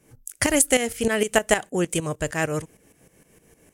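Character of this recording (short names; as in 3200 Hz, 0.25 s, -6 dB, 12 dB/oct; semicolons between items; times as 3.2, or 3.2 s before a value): tremolo saw up 6.5 Hz, depth 75%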